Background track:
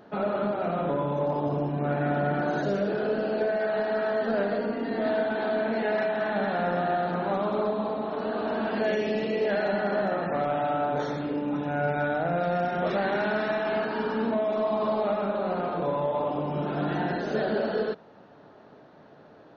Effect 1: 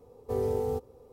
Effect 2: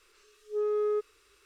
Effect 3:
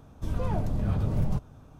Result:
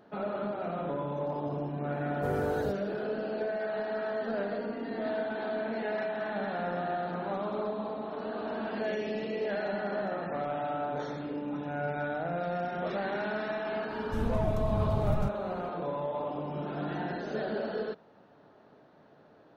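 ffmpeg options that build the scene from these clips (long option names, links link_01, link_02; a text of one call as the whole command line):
ffmpeg -i bed.wav -i cue0.wav -i cue1.wav -i cue2.wav -filter_complex "[0:a]volume=-6.5dB[link_01];[1:a]atrim=end=1.12,asetpts=PTS-STARTPTS,volume=-3.5dB,afade=type=in:duration=0.004:curve=hsin,afade=type=out:start_time=1.116:duration=0.004:curve=hsin,adelay=1930[link_02];[3:a]atrim=end=1.79,asetpts=PTS-STARTPTS,volume=-3dB,afade=type=in:duration=0.004:curve=hsin,afade=type=out:start_time=1.786:duration=0.004:curve=hsin,adelay=13900[link_03];[link_01][link_02][link_03]amix=inputs=3:normalize=0" out.wav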